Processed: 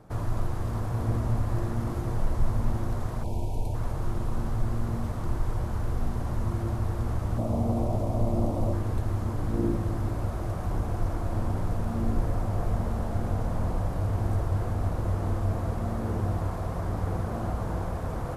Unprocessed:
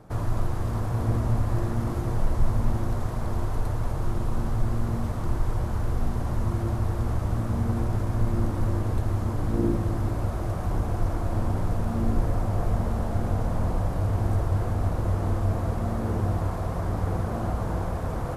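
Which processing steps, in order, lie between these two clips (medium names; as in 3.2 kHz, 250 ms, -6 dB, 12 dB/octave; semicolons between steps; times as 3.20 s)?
3.23–3.74 s: time-frequency box 1–2.2 kHz -24 dB; 7.38–8.73 s: fifteen-band graphic EQ 250 Hz +4 dB, 630 Hz +12 dB, 1.6 kHz -11 dB; trim -2.5 dB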